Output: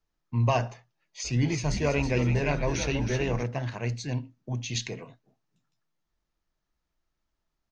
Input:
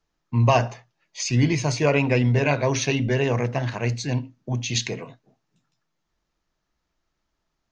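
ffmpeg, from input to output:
-filter_complex "[0:a]lowshelf=f=68:g=6.5,asplit=3[a][b][c];[a]afade=t=out:st=1.24:d=0.02[d];[b]asplit=7[e][f][g][h][i][j][k];[f]adelay=322,afreqshift=-88,volume=-7dB[l];[g]adelay=644,afreqshift=-176,volume=-13.6dB[m];[h]adelay=966,afreqshift=-264,volume=-20.1dB[n];[i]adelay=1288,afreqshift=-352,volume=-26.7dB[o];[j]adelay=1610,afreqshift=-440,volume=-33.2dB[p];[k]adelay=1932,afreqshift=-528,volume=-39.8dB[q];[e][l][m][n][o][p][q]amix=inputs=7:normalize=0,afade=t=in:st=1.24:d=0.02,afade=t=out:st=3.42:d=0.02[r];[c]afade=t=in:st=3.42:d=0.02[s];[d][r][s]amix=inputs=3:normalize=0,volume=-7dB"

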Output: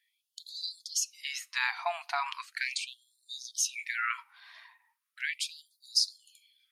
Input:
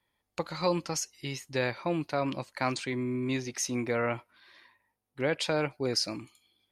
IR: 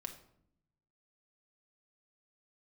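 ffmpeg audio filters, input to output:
-filter_complex "[0:a]asettb=1/sr,asplit=3[a][b][c];[a]atrim=end=5.334[d];[b]atrim=start=5.33:end=5.92,asetpts=PTS-STARTPTS,afade=t=in:d=0.004:c=qsin,afade=t=out:st=0.586:d=0.004:c=qsin,aderivative[e];[c]atrim=start=5.916[f];[d][e]acrossfade=d=0.004:c1=hsin:c2=qsin[g];[g][f]acrossfade=d=0.004:c1=qsin:c2=hsin,asplit=2[h][i];[1:a]atrim=start_sample=2205,lowpass=4.6k[j];[i][j]afir=irnorm=-1:irlink=0,volume=-12dB[k];[h][k]amix=inputs=2:normalize=0,afftfilt=real='re*gte(b*sr/1024,640*pow(3600/640,0.5+0.5*sin(2*PI*0.38*pts/sr)))':imag='im*gte(b*sr/1024,640*pow(3600/640,0.5+0.5*sin(2*PI*0.38*pts/sr)))':win_size=1024:overlap=0.75,volume=3.5dB"

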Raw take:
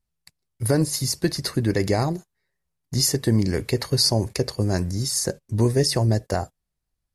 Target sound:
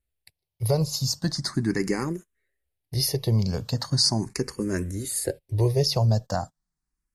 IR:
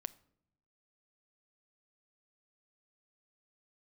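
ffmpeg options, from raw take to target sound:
-filter_complex "[0:a]asplit=2[a][b];[b]afreqshift=0.39[c];[a][c]amix=inputs=2:normalize=1"

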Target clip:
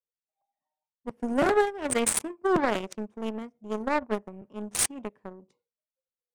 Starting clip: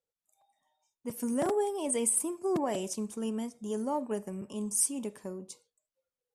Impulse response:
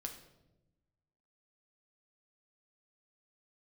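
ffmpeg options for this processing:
-af "aeval=exprs='0.15*(cos(1*acos(clip(val(0)/0.15,-1,1)))-cos(1*PI/2))+0.0188*(cos(7*acos(clip(val(0)/0.15,-1,1)))-cos(7*PI/2))':c=same,adynamicequalizer=threshold=0.00224:dfrequency=2000:dqfactor=1.7:tfrequency=2000:tqfactor=1.7:attack=5:release=100:ratio=0.375:range=2.5:mode=boostabove:tftype=bell,adynamicsmooth=sensitivity=6:basefreq=1.8k,volume=7.5dB"

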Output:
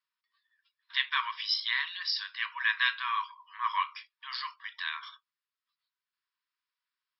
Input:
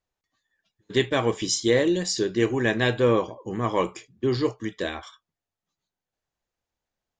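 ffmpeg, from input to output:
-af "afftfilt=real='re*between(b*sr/4096,930,5500)':imag='im*between(b*sr/4096,930,5500)':win_size=4096:overlap=0.75"

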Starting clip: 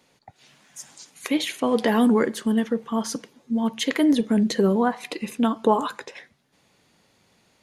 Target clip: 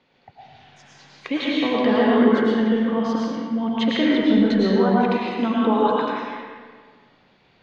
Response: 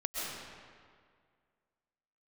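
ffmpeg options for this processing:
-filter_complex "[0:a]lowpass=f=4k:w=0.5412,lowpass=f=4k:w=1.3066,asplit=2[a][b];[b]alimiter=limit=-15.5dB:level=0:latency=1,volume=0dB[c];[a][c]amix=inputs=2:normalize=0[d];[1:a]atrim=start_sample=2205,asetrate=52920,aresample=44100[e];[d][e]afir=irnorm=-1:irlink=0,volume=-4dB"

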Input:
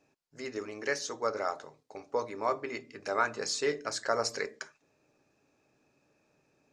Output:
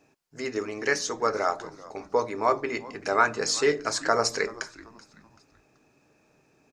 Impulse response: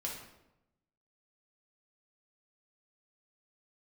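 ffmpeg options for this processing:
-filter_complex "[0:a]equalizer=f=3.9k:t=o:w=0.77:g=-2,bandreject=f=560:w=12,asplit=2[a][b];[b]asplit=3[c][d][e];[c]adelay=382,afreqshift=-120,volume=-20dB[f];[d]adelay=764,afreqshift=-240,volume=-28.2dB[g];[e]adelay=1146,afreqshift=-360,volume=-36.4dB[h];[f][g][h]amix=inputs=3:normalize=0[i];[a][i]amix=inputs=2:normalize=0,volume=7.5dB"

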